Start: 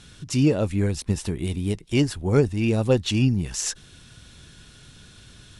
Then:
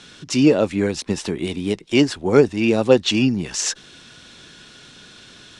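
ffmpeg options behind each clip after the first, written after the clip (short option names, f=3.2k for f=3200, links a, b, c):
-filter_complex "[0:a]acrossover=split=200 7700:gain=0.126 1 0.1[a][b][c];[a][b][c]amix=inputs=3:normalize=0,volume=7.5dB"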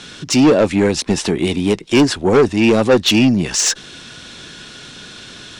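-af "asoftclip=type=tanh:threshold=-15dB,volume=8.5dB"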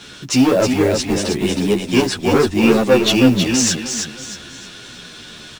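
-filter_complex "[0:a]acrusher=bits=6:mode=log:mix=0:aa=0.000001,asplit=2[a][b];[b]aecho=0:1:317|634|951|1268:0.531|0.186|0.065|0.0228[c];[a][c]amix=inputs=2:normalize=0,asplit=2[d][e];[e]adelay=11.3,afreqshift=-0.7[f];[d][f]amix=inputs=2:normalize=1,volume=1dB"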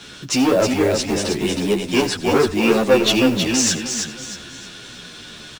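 -filter_complex "[0:a]acrossover=split=280[a][b];[a]asoftclip=type=tanh:threshold=-22dB[c];[c][b]amix=inputs=2:normalize=0,aecho=1:1:91:0.141,volume=-1dB"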